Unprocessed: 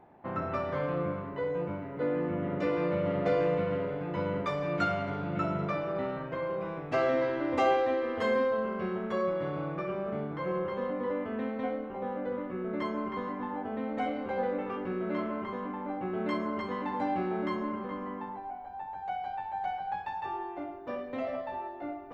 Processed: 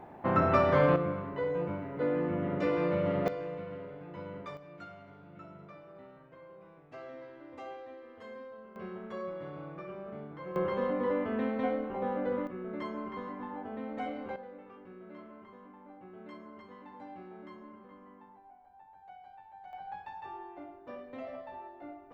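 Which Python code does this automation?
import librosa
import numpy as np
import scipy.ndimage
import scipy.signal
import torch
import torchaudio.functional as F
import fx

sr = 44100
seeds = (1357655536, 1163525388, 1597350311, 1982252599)

y = fx.gain(x, sr, db=fx.steps((0.0, 8.0), (0.96, 0.0), (3.28, -11.0), (4.57, -19.0), (8.76, -9.0), (10.56, 2.0), (12.47, -5.0), (14.36, -16.5), (19.73, -8.0)))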